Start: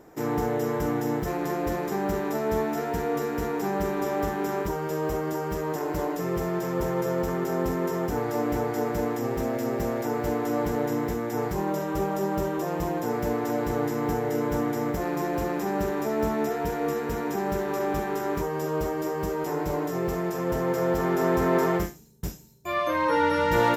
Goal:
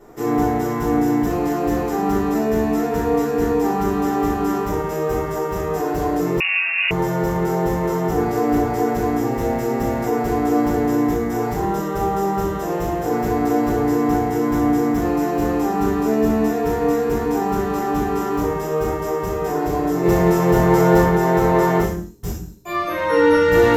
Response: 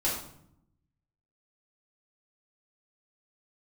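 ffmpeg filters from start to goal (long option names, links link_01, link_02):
-filter_complex "[0:a]asettb=1/sr,asplit=3[link_01][link_02][link_03];[link_01]atrim=end=20.034[link_04];[link_02]atrim=start=20.03:end=21.03,asetpts=PTS-STARTPTS,afade=type=in:duration=0.004:curve=qsin,afade=type=out:start_time=0.996:duration=0.004:curve=qsin,acontrast=37[link_05];[link_03]atrim=start=21.026[link_06];[link_04][link_05]acrossfade=duration=0.004:curve1=hsin:curve2=qsin[link_07];[link_07][link_06]acrossfade=duration=0.004:curve1=qsin:curve2=hsin[link_08];[1:a]atrim=start_sample=2205,afade=type=out:start_time=0.37:duration=0.01,atrim=end_sample=16758,asetrate=57330,aresample=44100[link_09];[link_08][link_09]afir=irnorm=-1:irlink=0,asettb=1/sr,asplit=3[link_10][link_11][link_12];[link_10]atrim=end=6.404[link_13];[link_11]atrim=start=6.4:end=6.91,asetpts=PTS-STARTPTS,afade=type=in:duration=0.004:curve=qsin,afade=type=out:start_time=0.506:duration=0.004:curve=qsin,lowpass=frequency=2500:width_type=q:width=0.5098,lowpass=frequency=2500:width_type=q:width=0.6013,lowpass=frequency=2500:width_type=q:width=0.9,lowpass=frequency=2500:width_type=q:width=2.563,afreqshift=-2900[link_14];[link_12]atrim=start=6.906[link_15];[link_13][link_14]acrossfade=duration=0.004:curve1=hsin:curve2=qsin[link_16];[link_16][link_15]acrossfade=duration=0.004:curve1=qsin:curve2=hsin"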